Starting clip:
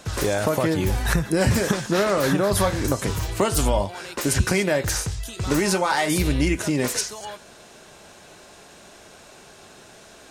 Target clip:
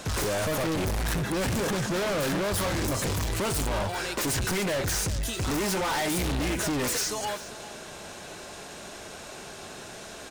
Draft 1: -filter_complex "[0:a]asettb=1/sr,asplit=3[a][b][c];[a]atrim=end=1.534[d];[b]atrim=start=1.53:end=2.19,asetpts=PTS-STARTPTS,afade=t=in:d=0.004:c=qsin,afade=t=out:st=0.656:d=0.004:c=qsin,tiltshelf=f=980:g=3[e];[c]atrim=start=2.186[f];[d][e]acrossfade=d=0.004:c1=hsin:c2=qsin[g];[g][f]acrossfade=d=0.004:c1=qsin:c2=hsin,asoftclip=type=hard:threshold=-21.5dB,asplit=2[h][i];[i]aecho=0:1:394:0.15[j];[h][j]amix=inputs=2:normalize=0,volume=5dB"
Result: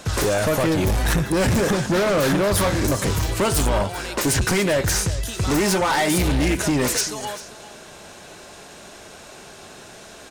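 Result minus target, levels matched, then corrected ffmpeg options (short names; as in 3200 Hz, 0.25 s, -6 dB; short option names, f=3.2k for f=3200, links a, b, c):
hard clip: distortion -5 dB
-filter_complex "[0:a]asettb=1/sr,asplit=3[a][b][c];[a]atrim=end=1.534[d];[b]atrim=start=1.53:end=2.19,asetpts=PTS-STARTPTS,afade=t=in:d=0.004:c=qsin,afade=t=out:st=0.656:d=0.004:c=qsin,tiltshelf=f=980:g=3[e];[c]atrim=start=2.186[f];[d][e]acrossfade=d=0.004:c1=hsin:c2=qsin[g];[g][f]acrossfade=d=0.004:c1=qsin:c2=hsin,asoftclip=type=hard:threshold=-31.5dB,asplit=2[h][i];[i]aecho=0:1:394:0.15[j];[h][j]amix=inputs=2:normalize=0,volume=5dB"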